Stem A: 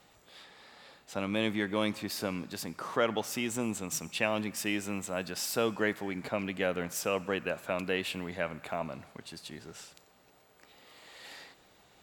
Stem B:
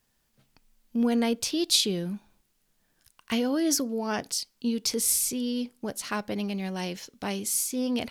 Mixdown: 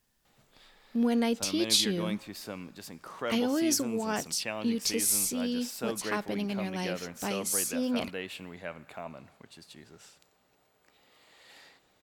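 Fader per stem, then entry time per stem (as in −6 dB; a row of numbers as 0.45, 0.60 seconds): −6.0, −2.0 decibels; 0.25, 0.00 seconds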